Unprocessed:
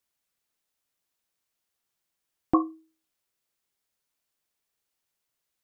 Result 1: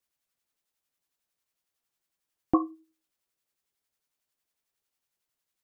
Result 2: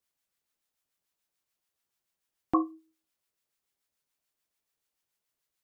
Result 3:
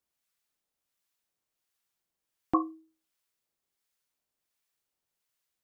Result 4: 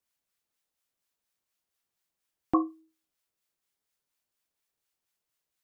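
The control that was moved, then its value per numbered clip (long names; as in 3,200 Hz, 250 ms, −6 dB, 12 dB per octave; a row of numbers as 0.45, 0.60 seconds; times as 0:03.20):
two-band tremolo in antiphase, speed: 11, 6.9, 1.4, 4.2 Hertz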